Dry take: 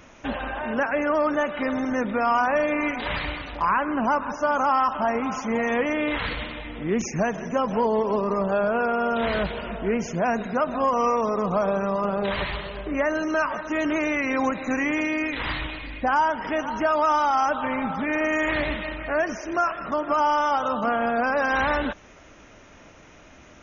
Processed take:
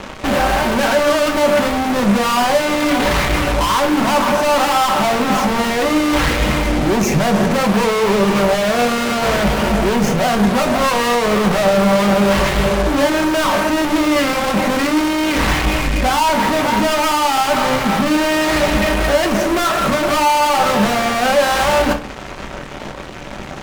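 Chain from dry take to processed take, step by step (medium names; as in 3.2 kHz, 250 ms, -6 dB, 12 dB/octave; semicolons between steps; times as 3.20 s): treble shelf 2.3 kHz -11 dB; fuzz box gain 46 dB, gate -48 dBFS; simulated room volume 310 m³, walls furnished, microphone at 1.1 m; trim -3 dB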